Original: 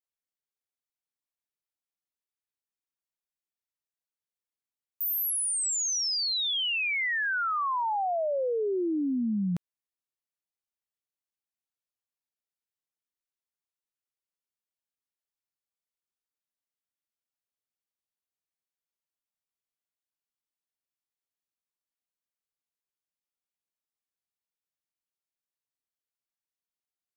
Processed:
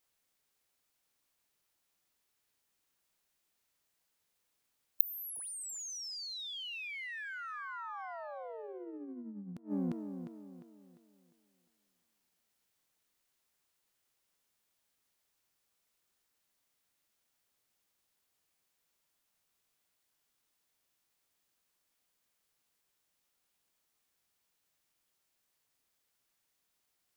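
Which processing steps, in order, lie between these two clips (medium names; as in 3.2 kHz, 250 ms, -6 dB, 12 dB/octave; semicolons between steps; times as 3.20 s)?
tape echo 351 ms, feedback 43%, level -17 dB, low-pass 4.2 kHz; formant shift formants +2 st; inverted gate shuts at -31 dBFS, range -28 dB; trim +14 dB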